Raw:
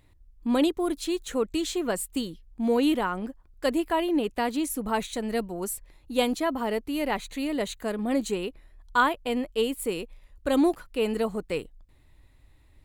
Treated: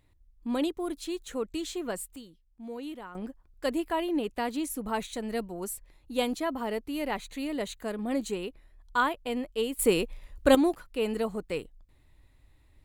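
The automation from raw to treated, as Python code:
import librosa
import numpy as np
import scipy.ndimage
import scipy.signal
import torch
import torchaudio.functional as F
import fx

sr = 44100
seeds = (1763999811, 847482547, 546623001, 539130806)

y = fx.gain(x, sr, db=fx.steps((0.0, -6.0), (2.16, -16.0), (3.15, -4.0), (9.79, 6.0), (10.55, -3.0)))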